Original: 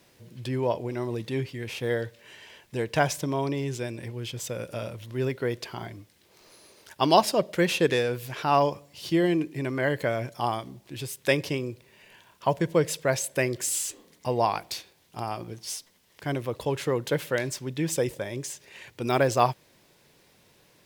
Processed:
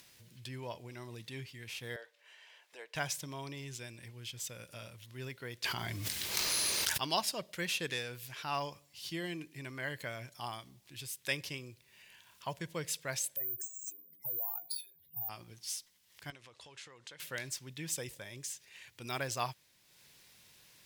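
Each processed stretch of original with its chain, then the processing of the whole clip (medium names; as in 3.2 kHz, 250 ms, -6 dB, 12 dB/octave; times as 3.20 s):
1.96–2.95 s: high-pass 540 Hz 24 dB/octave + tilt EQ -3.5 dB/octave
5.64–7.02 s: gate -58 dBFS, range -9 dB + level flattener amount 100%
13.36–15.29 s: spectral contrast enhancement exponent 3.4 + compression 5:1, threshold -34 dBFS + careless resampling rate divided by 3×, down filtered, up zero stuff
16.30–17.20 s: bass shelf 350 Hz -12 dB + compression 3:1, threshold -39 dBFS + low-pass 8.3 kHz 24 dB/octave
whole clip: amplifier tone stack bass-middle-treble 5-5-5; upward compressor, threshold -54 dBFS; trim +1.5 dB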